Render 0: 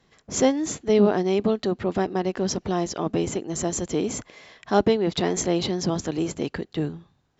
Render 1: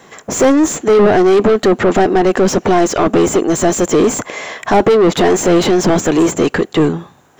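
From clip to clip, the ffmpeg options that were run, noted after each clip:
-filter_complex "[0:a]aexciter=amount=8.7:drive=3.9:freq=6.7k,asplit=2[a][b];[b]highpass=f=720:p=1,volume=29dB,asoftclip=type=tanh:threshold=-6dB[c];[a][c]amix=inputs=2:normalize=0,lowpass=f=1.1k:p=1,volume=-6dB,acontrast=50"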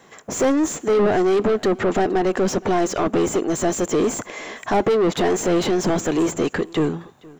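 -af "aecho=1:1:468:0.0668,volume=-8dB"

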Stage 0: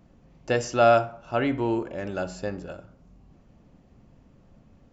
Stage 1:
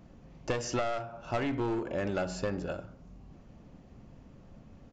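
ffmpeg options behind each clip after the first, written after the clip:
-af "aresample=16000,aeval=exprs='clip(val(0),-1,0.0531)':c=same,aresample=44100,acompressor=threshold=-30dB:ratio=16,volume=2.5dB"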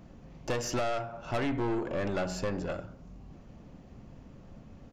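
-af "aeval=exprs='(tanh(31.6*val(0)+0.4)-tanh(0.4))/31.6':c=same,volume=4dB"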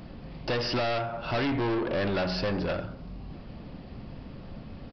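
-af "highshelf=f=3.5k:g=10,aresample=11025,asoftclip=type=tanh:threshold=-32.5dB,aresample=44100,volume=8dB"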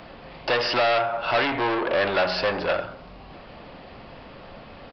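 -filter_complex "[0:a]acontrast=71,acrossover=split=460 4700:gain=0.158 1 0.178[a][b][c];[a][b][c]amix=inputs=3:normalize=0,volume=3dB"

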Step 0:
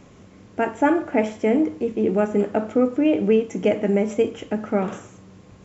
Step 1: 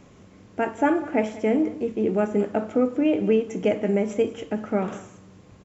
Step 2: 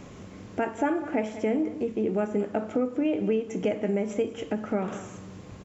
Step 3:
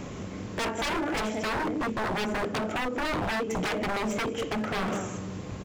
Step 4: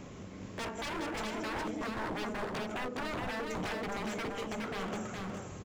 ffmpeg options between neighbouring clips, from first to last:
-af "aecho=1:1:193:0.119,volume=-2.5dB"
-af "acompressor=threshold=-38dB:ratio=2,volume=6dB"
-af "aeval=exprs='0.0299*(abs(mod(val(0)/0.0299+3,4)-2)-1)':c=same,volume=6.5dB"
-af "aecho=1:1:415:0.668,volume=-9dB"

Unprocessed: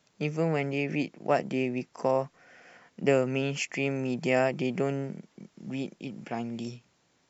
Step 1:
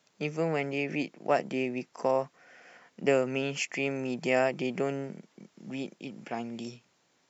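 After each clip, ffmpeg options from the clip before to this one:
-af "highpass=f=240:p=1"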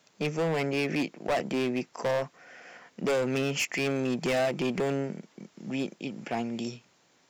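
-af "asoftclip=type=hard:threshold=-28.5dB,volume=5dB"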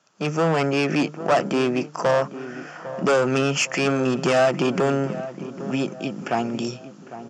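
-filter_complex "[0:a]highpass=110,equalizer=f=240:t=q:w=4:g=-4,equalizer=f=460:t=q:w=4:g=-4,equalizer=f=1.3k:t=q:w=4:g=7,equalizer=f=2.1k:t=q:w=4:g=-8,equalizer=f=3.9k:t=q:w=4:g=-8,lowpass=f=7.7k:w=0.5412,lowpass=f=7.7k:w=1.3066,asplit=2[a][b];[b]adelay=803,lowpass=f=1.3k:p=1,volume=-13dB,asplit=2[c][d];[d]adelay=803,lowpass=f=1.3k:p=1,volume=0.49,asplit=2[e][f];[f]adelay=803,lowpass=f=1.3k:p=1,volume=0.49,asplit=2[g][h];[h]adelay=803,lowpass=f=1.3k:p=1,volume=0.49,asplit=2[i][j];[j]adelay=803,lowpass=f=1.3k:p=1,volume=0.49[k];[a][c][e][g][i][k]amix=inputs=6:normalize=0,dynaudnorm=f=150:g=3:m=9.5dB"

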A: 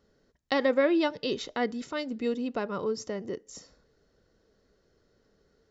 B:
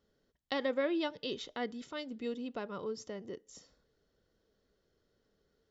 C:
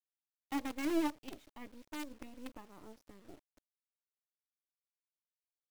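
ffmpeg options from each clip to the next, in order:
-af "equalizer=f=3.3k:t=o:w=0.33:g=7,volume=-8.5dB"
-filter_complex "[0:a]asplit=3[a][b][c];[a]bandpass=f=300:t=q:w=8,volume=0dB[d];[b]bandpass=f=870:t=q:w=8,volume=-6dB[e];[c]bandpass=f=2.24k:t=q:w=8,volume=-9dB[f];[d][e][f]amix=inputs=3:normalize=0,acrusher=bits=8:dc=4:mix=0:aa=0.000001,aeval=exprs='0.0211*(cos(1*acos(clip(val(0)/0.0211,-1,1)))-cos(1*PI/2))+0.00944*(cos(2*acos(clip(val(0)/0.0211,-1,1)))-cos(2*PI/2))+0.00211*(cos(4*acos(clip(val(0)/0.0211,-1,1)))-cos(4*PI/2))+0.000944*(cos(7*acos(clip(val(0)/0.0211,-1,1)))-cos(7*PI/2))':c=same,volume=7dB"

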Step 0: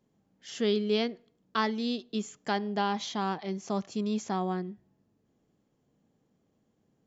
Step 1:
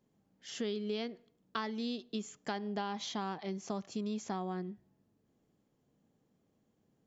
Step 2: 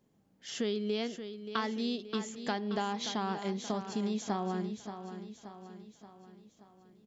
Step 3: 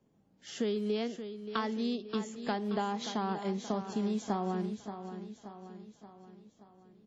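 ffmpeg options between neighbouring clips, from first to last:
-af "acompressor=threshold=-31dB:ratio=6,volume=-2.5dB"
-af "aecho=1:1:578|1156|1734|2312|2890|3468:0.316|0.164|0.0855|0.0445|0.0231|0.012,volume=3.5dB"
-filter_complex "[0:a]acrossover=split=220|720|1300[a][b][c][d];[a]acrusher=bits=5:mode=log:mix=0:aa=0.000001[e];[d]aeval=exprs='0.075*(cos(1*acos(clip(val(0)/0.075,-1,1)))-cos(1*PI/2))+0.0119*(cos(3*acos(clip(val(0)/0.075,-1,1)))-cos(3*PI/2))':c=same[f];[e][b][c][f]amix=inputs=4:normalize=0,volume=1dB" -ar 48000 -c:a wmav2 -b:a 32k

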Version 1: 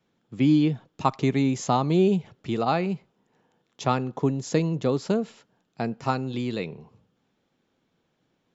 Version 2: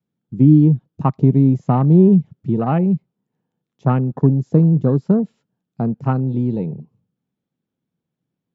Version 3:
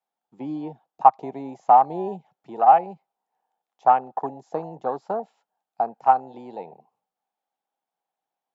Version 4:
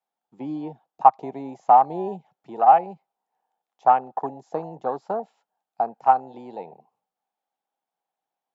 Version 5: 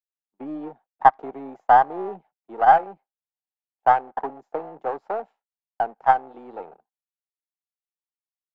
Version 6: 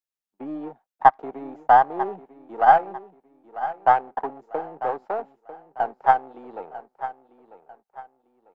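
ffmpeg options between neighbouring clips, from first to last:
-filter_complex "[0:a]afwtdn=0.0224,acrossover=split=2800[a][b];[b]acompressor=threshold=-58dB:ratio=4:attack=1:release=60[c];[a][c]amix=inputs=2:normalize=0,equalizer=f=150:w=0.67:g=14"
-af "highpass=f=780:t=q:w=6.5,volume=-3dB"
-af anull
-filter_complex "[0:a]aeval=exprs='if(lt(val(0),0),0.447*val(0),val(0))':c=same,agate=range=-33dB:threshold=-43dB:ratio=3:detection=peak,acrossover=split=220 2500:gain=0.126 1 0.178[a][b][c];[a][b][c]amix=inputs=3:normalize=0,volume=2.5dB"
-af "aecho=1:1:946|1892|2838:0.211|0.0697|0.023"

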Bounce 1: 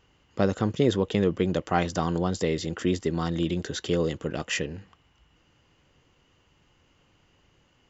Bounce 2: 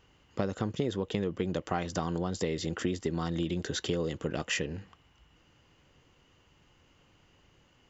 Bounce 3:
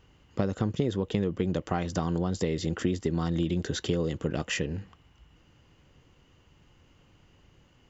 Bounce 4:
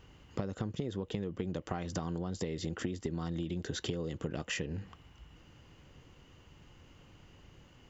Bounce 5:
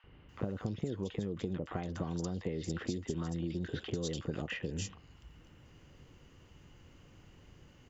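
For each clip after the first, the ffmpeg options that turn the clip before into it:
-af "acompressor=threshold=-27dB:ratio=6"
-af "lowshelf=f=300:g=6.5"
-af "acompressor=threshold=-36dB:ratio=5,volume=2.5dB"
-filter_complex "[0:a]acrossover=split=920|3300[a][b][c];[a]adelay=40[d];[c]adelay=290[e];[d][b][e]amix=inputs=3:normalize=0"

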